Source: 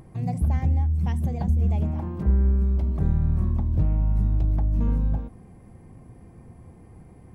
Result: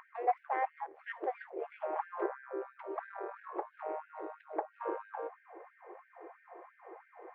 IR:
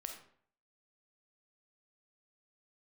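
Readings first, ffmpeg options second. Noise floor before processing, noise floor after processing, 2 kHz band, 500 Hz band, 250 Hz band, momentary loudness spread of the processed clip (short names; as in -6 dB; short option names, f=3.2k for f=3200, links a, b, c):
-49 dBFS, -67 dBFS, n/a, +1.5 dB, -19.0 dB, 19 LU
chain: -af "asoftclip=type=tanh:threshold=-18.5dB,lowpass=f=1.9k:w=0.5412,lowpass=f=1.9k:w=1.3066,afftfilt=real='re*gte(b*sr/1024,330*pow(1500/330,0.5+0.5*sin(2*PI*3*pts/sr)))':imag='im*gte(b*sr/1024,330*pow(1500/330,0.5+0.5*sin(2*PI*3*pts/sr)))':win_size=1024:overlap=0.75,volume=9.5dB"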